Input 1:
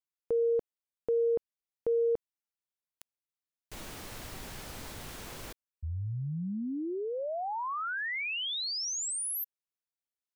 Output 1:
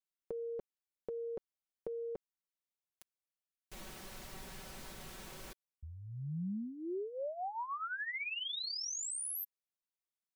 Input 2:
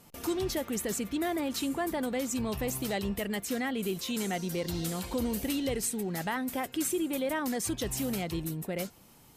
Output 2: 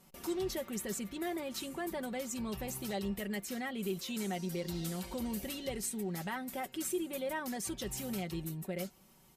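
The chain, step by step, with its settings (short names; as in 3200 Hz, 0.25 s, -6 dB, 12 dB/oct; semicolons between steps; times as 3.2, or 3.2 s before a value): comb 5.3 ms, depth 58%; gain -7 dB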